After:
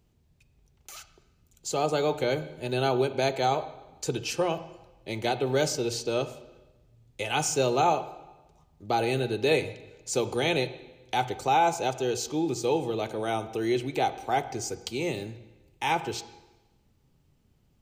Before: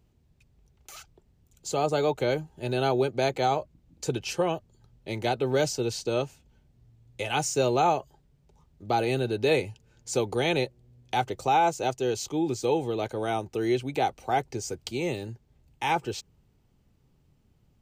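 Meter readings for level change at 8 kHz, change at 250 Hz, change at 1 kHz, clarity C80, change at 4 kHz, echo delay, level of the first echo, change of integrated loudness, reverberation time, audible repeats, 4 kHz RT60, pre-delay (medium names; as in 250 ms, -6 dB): +2.0 dB, -0.5 dB, -0.5 dB, 15.0 dB, +1.5 dB, no echo, no echo, -0.5 dB, 1.1 s, no echo, 1.0 s, 7 ms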